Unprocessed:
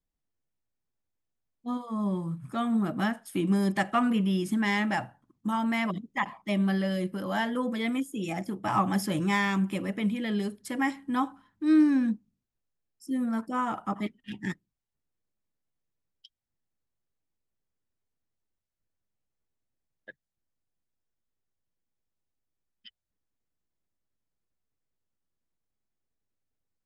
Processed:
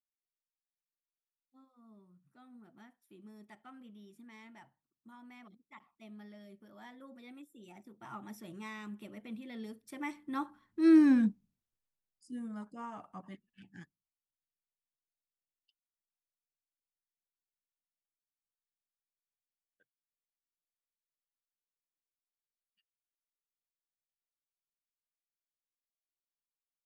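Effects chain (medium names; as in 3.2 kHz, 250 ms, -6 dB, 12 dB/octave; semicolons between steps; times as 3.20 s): Doppler pass-by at 11.11 s, 25 m/s, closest 7.6 m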